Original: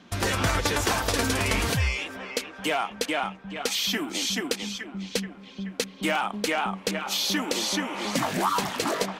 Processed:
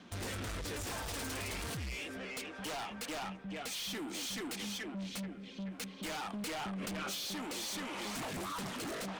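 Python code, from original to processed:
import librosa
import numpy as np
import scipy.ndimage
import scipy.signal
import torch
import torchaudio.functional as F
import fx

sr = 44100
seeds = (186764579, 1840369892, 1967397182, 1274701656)

y = fx.rotary(x, sr, hz=0.6)
y = fx.rider(y, sr, range_db=3, speed_s=0.5)
y = 10.0 ** (-26.0 / 20.0) * (np.abs((y / 10.0 ** (-26.0 / 20.0) + 3.0) % 4.0 - 2.0) - 1.0)
y = fx.peak_eq(y, sr, hz=8700.0, db=5.0, octaves=0.25)
y = 10.0 ** (-36.5 / 20.0) * np.tanh(y / 10.0 ** (-36.5 / 20.0))
y = fx.env_flatten(y, sr, amount_pct=100, at=(6.33, 7.15))
y = y * 10.0 ** (-1.5 / 20.0)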